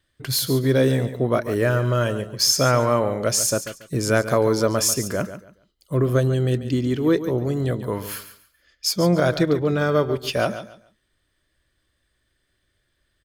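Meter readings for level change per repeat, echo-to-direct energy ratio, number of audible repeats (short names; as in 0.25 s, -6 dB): -12.5 dB, -11.5 dB, 2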